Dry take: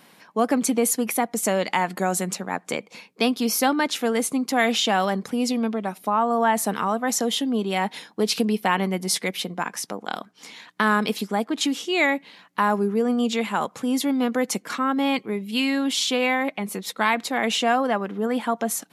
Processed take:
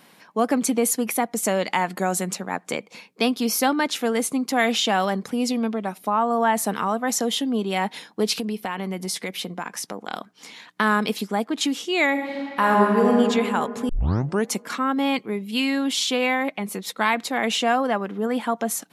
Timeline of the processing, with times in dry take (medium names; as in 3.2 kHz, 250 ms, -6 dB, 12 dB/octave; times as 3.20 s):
8.36–10.12 s: compression 3:1, threshold -25 dBFS
12.11–13.10 s: reverb throw, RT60 2.8 s, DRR -2.5 dB
13.89 s: tape start 0.60 s